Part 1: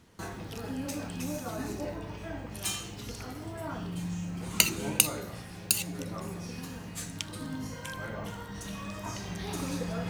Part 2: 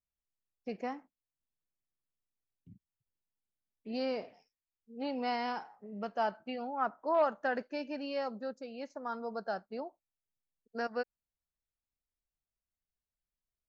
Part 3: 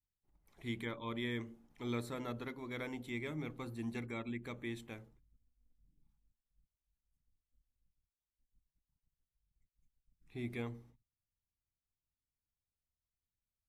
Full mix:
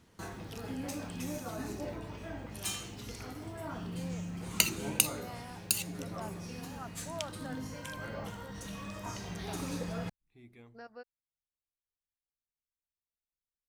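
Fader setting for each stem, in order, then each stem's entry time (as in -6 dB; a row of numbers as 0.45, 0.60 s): -3.5, -13.5, -14.5 dB; 0.00, 0.00, 0.00 s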